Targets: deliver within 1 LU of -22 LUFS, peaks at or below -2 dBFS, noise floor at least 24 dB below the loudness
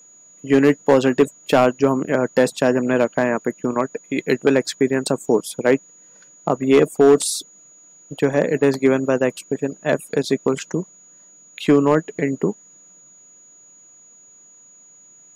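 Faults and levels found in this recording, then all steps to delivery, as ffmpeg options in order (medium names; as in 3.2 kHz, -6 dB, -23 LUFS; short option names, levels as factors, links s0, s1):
steady tone 6.8 kHz; tone level -46 dBFS; loudness -19.0 LUFS; peak level -5.5 dBFS; loudness target -22.0 LUFS
-> -af "bandreject=f=6800:w=30"
-af "volume=0.708"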